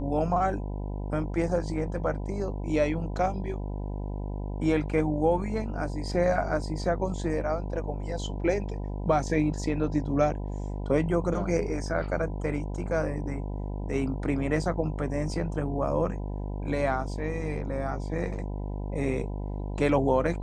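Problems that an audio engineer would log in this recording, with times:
buzz 50 Hz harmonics 20 -33 dBFS

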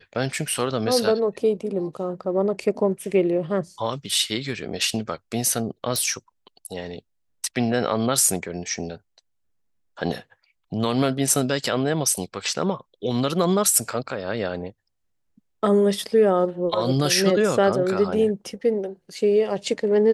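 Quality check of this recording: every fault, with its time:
5.96 s: pop

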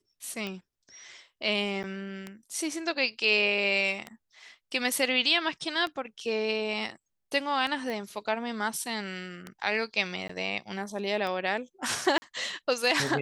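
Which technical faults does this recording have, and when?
tick 33 1/3 rpm -21 dBFS
1.83–1.84 s: dropout 7.5 ms
7.90 s: pop -22 dBFS
10.28–10.29 s: dropout 14 ms
12.18–12.22 s: dropout 40 ms

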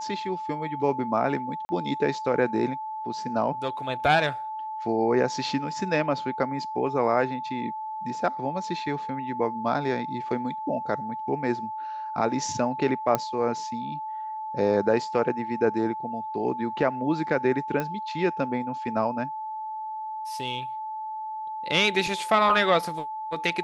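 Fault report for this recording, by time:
whine 870 Hz -31 dBFS
1.65–1.69 s: dropout 40 ms
13.15 s: pop -9 dBFS
17.80 s: pop -15 dBFS

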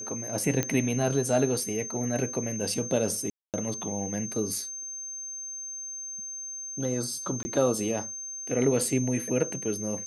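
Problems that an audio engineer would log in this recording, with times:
whine 6.3 kHz -35 dBFS
0.63 s: pop -11 dBFS
3.30–3.54 s: dropout 238 ms
7.43–7.45 s: dropout 20 ms

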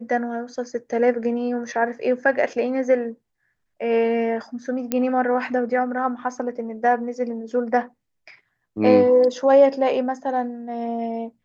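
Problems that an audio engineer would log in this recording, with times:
4.92 s: pop -8 dBFS

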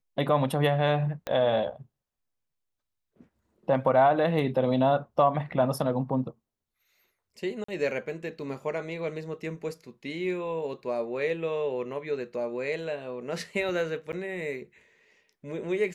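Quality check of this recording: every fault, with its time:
1.27 s: pop -17 dBFS
7.64–7.68 s: dropout 44 ms
14.12–14.13 s: dropout 9 ms

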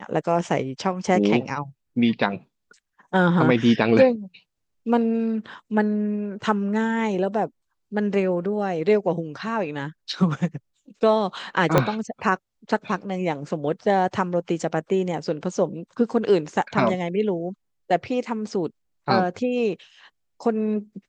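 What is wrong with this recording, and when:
11.78 s: pop -4 dBFS

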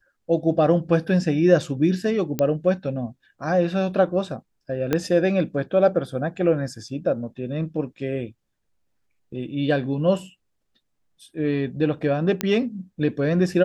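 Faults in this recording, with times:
2.39 s: pop -9 dBFS
4.93 s: pop -8 dBFS
12.41 s: pop -7 dBFS

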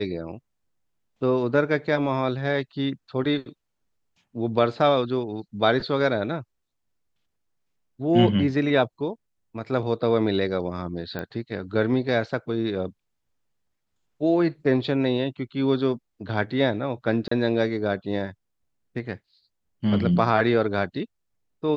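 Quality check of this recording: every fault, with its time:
11.19 s: pop -18 dBFS
17.28–17.31 s: dropout 34 ms

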